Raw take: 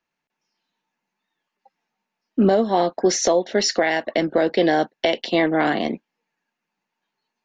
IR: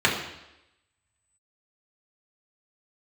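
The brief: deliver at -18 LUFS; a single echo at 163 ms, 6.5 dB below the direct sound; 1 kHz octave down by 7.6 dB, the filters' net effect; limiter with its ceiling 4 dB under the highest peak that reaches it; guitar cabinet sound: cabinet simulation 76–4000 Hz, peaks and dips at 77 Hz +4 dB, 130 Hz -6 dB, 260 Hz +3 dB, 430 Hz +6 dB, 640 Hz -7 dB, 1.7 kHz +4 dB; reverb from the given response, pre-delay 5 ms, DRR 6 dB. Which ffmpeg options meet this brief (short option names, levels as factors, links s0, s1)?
-filter_complex "[0:a]equalizer=f=1000:t=o:g=-8.5,alimiter=limit=0.251:level=0:latency=1,aecho=1:1:163:0.473,asplit=2[s0][s1];[1:a]atrim=start_sample=2205,adelay=5[s2];[s1][s2]afir=irnorm=-1:irlink=0,volume=0.0631[s3];[s0][s3]amix=inputs=2:normalize=0,highpass=76,equalizer=f=77:t=q:w=4:g=4,equalizer=f=130:t=q:w=4:g=-6,equalizer=f=260:t=q:w=4:g=3,equalizer=f=430:t=q:w=4:g=6,equalizer=f=640:t=q:w=4:g=-7,equalizer=f=1700:t=q:w=4:g=4,lowpass=f=4000:w=0.5412,lowpass=f=4000:w=1.3066,volume=1.41"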